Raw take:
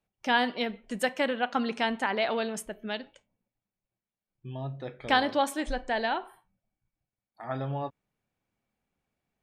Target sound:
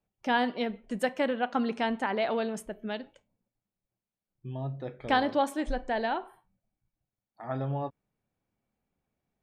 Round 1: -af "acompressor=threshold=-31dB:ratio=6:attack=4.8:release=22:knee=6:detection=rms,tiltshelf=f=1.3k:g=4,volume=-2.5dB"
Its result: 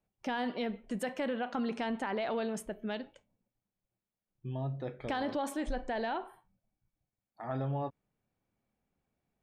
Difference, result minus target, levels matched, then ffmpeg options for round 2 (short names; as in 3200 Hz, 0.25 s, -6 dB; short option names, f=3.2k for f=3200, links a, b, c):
compressor: peak gain reduction +11.5 dB
-af "tiltshelf=f=1.3k:g=4,volume=-2.5dB"